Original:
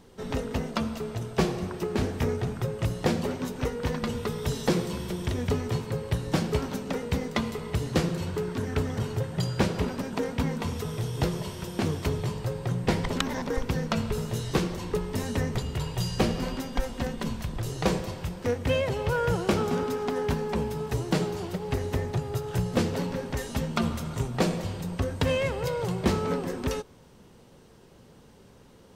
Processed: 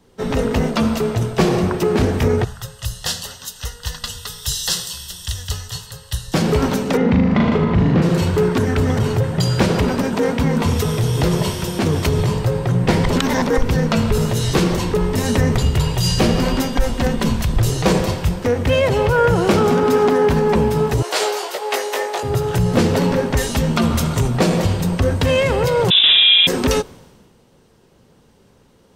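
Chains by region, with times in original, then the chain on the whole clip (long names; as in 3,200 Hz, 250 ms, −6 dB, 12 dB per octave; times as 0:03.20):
0:02.44–0:06.34: Butterworth band-reject 2,300 Hz, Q 3.4 + guitar amp tone stack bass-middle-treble 10-0-10
0:06.97–0:08.02: low-pass filter 3,100 Hz + parametric band 190 Hz +10 dB 0.69 octaves + flutter between parallel walls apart 6.6 metres, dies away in 0.65 s
0:21.02–0:22.23: high-pass filter 510 Hz 24 dB per octave + double-tracking delay 19 ms −3.5 dB
0:25.90–0:26.47: high-pass filter 200 Hz 6 dB per octave + voice inversion scrambler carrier 3,700 Hz + flutter between parallel walls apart 11.7 metres, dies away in 1.5 s
whole clip: boost into a limiter +23 dB; multiband upward and downward expander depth 70%; level −7 dB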